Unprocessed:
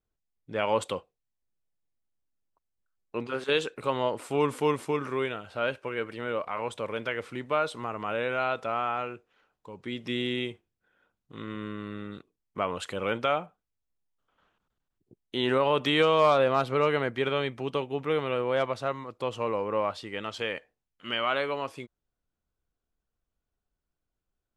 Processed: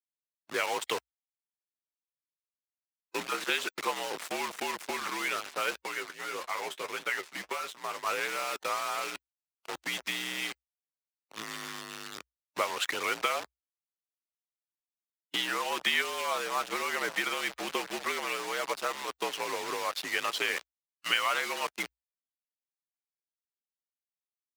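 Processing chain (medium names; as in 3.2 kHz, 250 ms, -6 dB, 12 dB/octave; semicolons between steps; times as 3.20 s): companding laws mixed up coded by mu; delay 837 ms -23.5 dB; compression 5:1, threshold -27 dBFS, peak gain reduction 9.5 dB; dynamic bell 2.1 kHz, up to +5 dB, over -51 dBFS, Q 2.1; word length cut 6-bit, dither none; harmonic-percussive split harmonic -10 dB; 5.85–8.06 s: flange 1.7 Hz, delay 6.9 ms, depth 6.8 ms, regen +45%; gate -43 dBFS, range -8 dB; frequency shift -61 Hz; frequency weighting A; trim +4 dB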